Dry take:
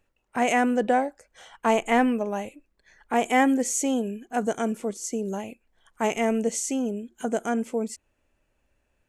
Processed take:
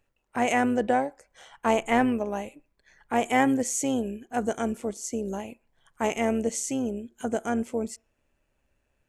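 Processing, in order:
amplitude modulation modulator 140 Hz, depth 25%
on a send: convolution reverb RT60 0.50 s, pre-delay 3 ms, DRR 23.5 dB

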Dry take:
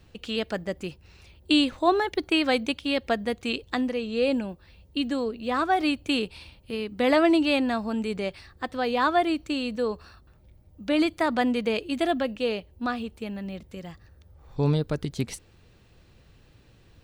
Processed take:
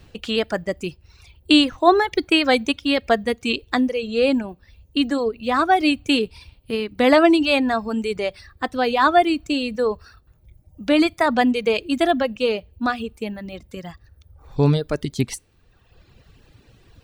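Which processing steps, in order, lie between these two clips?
coupled-rooms reverb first 0.29 s, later 1.6 s, from −26 dB, DRR 17.5 dB
reverb reduction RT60 1.2 s
level +7 dB

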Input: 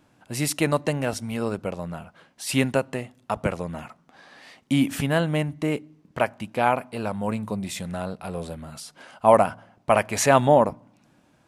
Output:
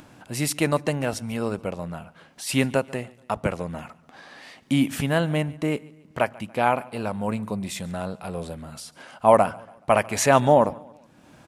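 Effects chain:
upward compression, threshold −39 dBFS
on a send: repeating echo 142 ms, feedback 42%, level −23 dB

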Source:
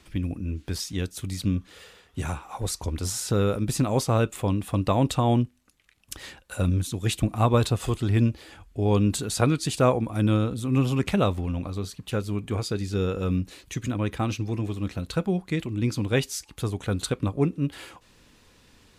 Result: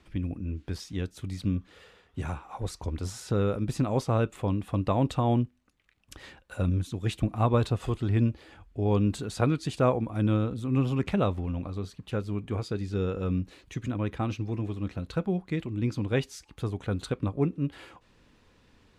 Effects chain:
low-pass filter 2,400 Hz 6 dB per octave
level −3 dB

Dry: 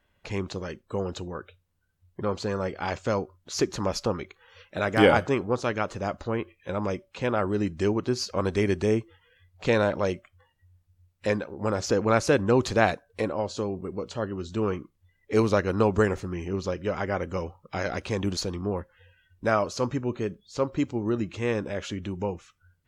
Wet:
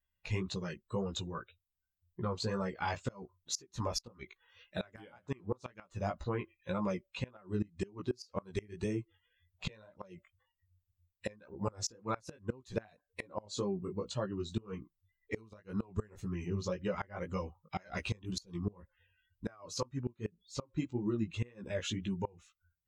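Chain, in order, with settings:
spectral dynamics exaggerated over time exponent 1.5
parametric band 350 Hz −3 dB 2.3 octaves
downward compressor 4 to 1, threshold −37 dBFS, peak gain reduction 17 dB
chorus effect 1.9 Hz, delay 15 ms, depth 4.1 ms
gate with flip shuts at −32 dBFS, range −25 dB
level +9 dB

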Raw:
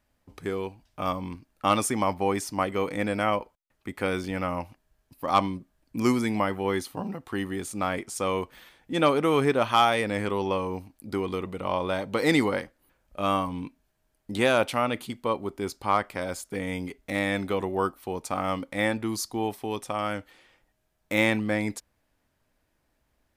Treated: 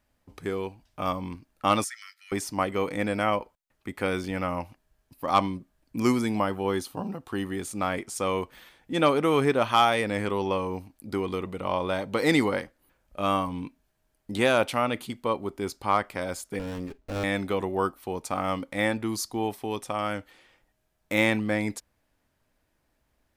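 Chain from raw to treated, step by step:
0:01.84–0:02.32: Chebyshev high-pass with heavy ripple 1,300 Hz, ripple 9 dB
0:06.22–0:07.43: parametric band 2,000 Hz −7 dB 0.32 octaves
0:16.59–0:17.24: windowed peak hold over 17 samples

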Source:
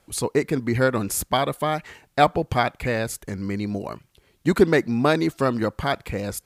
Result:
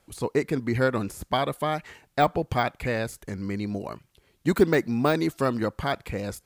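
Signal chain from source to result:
de-essing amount 60%
0:04.48–0:05.57: high-shelf EQ 9,700 Hz +6 dB
level −3 dB

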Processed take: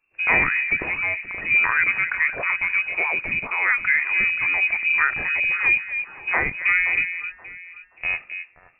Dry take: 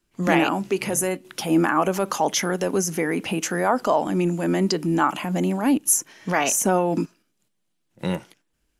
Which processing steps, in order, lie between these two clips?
on a send: delay that swaps between a low-pass and a high-pass 263 ms, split 1,000 Hz, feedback 52%, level −8 dB
on the sum: voice inversion scrambler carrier 2,700 Hz

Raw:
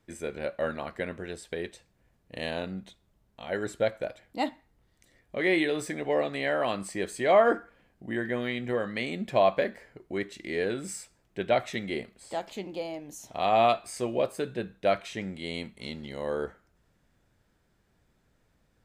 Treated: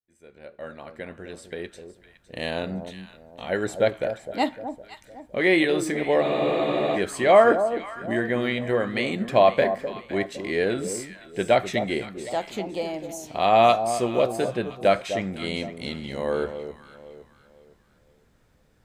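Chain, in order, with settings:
fade in at the beginning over 2.92 s
delay that swaps between a low-pass and a high-pass 255 ms, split 970 Hz, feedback 57%, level −9 dB
frozen spectrum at 0:06.25, 0.70 s
level +5.5 dB

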